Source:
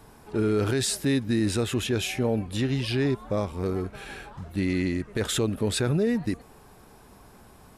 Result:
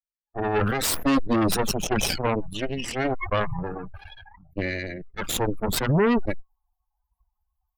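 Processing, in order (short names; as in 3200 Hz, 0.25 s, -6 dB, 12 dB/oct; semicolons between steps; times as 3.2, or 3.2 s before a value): per-bin expansion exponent 3; added harmonics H 3 -40 dB, 5 -40 dB, 6 -10 dB, 7 -17 dB, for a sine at -19.5 dBFS; sustainer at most 28 dB/s; gain +5.5 dB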